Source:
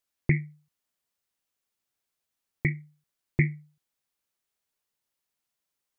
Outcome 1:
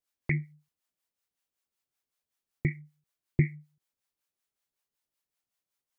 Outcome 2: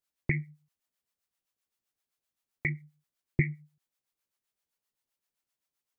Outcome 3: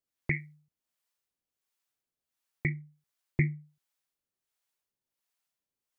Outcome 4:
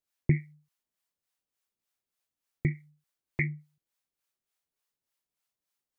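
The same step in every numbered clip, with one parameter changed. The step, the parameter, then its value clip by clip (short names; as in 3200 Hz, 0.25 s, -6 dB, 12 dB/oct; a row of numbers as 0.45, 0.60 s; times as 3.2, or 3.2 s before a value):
harmonic tremolo, rate: 5.3, 7.7, 1.4, 3.4 Hz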